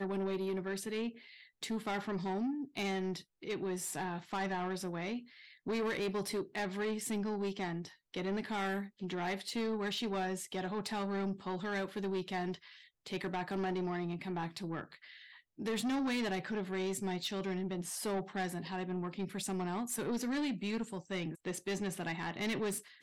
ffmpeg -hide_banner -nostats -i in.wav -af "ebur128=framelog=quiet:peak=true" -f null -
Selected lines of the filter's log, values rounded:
Integrated loudness:
  I:         -37.7 LUFS
  Threshold: -47.9 LUFS
Loudness range:
  LRA:         1.5 LU
  Threshold: -57.9 LUFS
  LRA low:   -38.7 LUFS
  LRA high:  -37.1 LUFS
True peak:
  Peak:      -29.0 dBFS